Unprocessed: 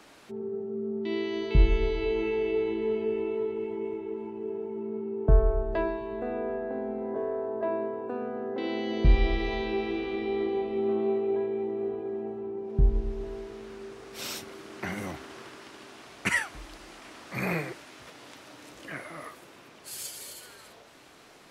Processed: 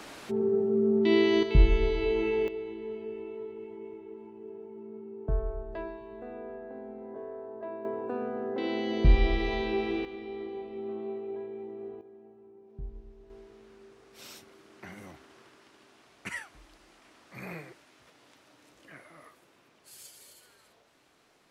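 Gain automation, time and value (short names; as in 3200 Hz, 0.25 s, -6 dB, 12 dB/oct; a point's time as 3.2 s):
+8 dB
from 1.43 s +0.5 dB
from 2.48 s -9.5 dB
from 7.85 s 0 dB
from 10.05 s -9.5 dB
from 12.01 s -18.5 dB
from 13.3 s -11.5 dB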